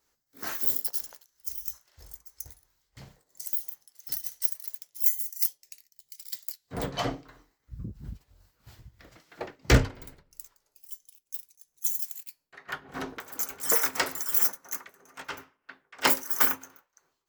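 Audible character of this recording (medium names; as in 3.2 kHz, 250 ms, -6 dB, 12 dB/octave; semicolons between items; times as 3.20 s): tremolo triangle 3 Hz, depth 75%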